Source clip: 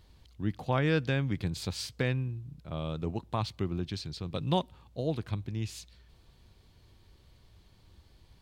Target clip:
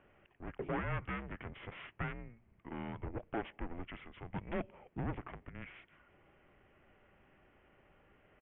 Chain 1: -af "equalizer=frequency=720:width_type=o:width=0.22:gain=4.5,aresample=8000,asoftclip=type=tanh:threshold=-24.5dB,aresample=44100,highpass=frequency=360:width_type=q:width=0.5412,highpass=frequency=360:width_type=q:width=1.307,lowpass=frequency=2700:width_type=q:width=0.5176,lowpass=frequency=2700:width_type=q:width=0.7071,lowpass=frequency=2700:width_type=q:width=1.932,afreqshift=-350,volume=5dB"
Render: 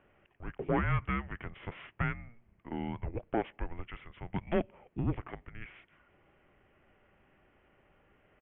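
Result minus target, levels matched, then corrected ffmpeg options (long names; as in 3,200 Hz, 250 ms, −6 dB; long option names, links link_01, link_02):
soft clipping: distortion −8 dB
-af "equalizer=frequency=720:width_type=o:width=0.22:gain=4.5,aresample=8000,asoftclip=type=tanh:threshold=-35.5dB,aresample=44100,highpass=frequency=360:width_type=q:width=0.5412,highpass=frequency=360:width_type=q:width=1.307,lowpass=frequency=2700:width_type=q:width=0.5176,lowpass=frequency=2700:width_type=q:width=0.7071,lowpass=frequency=2700:width_type=q:width=1.932,afreqshift=-350,volume=5dB"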